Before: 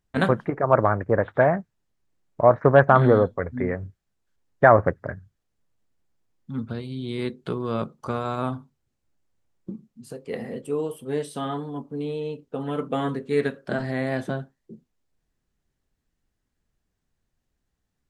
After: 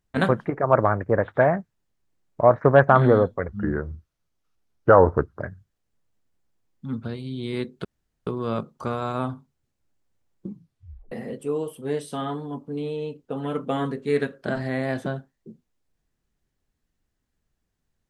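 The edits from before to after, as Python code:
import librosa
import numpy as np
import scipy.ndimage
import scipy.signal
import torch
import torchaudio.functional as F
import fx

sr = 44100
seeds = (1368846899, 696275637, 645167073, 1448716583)

y = fx.edit(x, sr, fx.speed_span(start_s=3.48, length_s=1.58, speed=0.82),
    fx.insert_room_tone(at_s=7.5, length_s=0.42),
    fx.tape_stop(start_s=9.72, length_s=0.63), tone=tone)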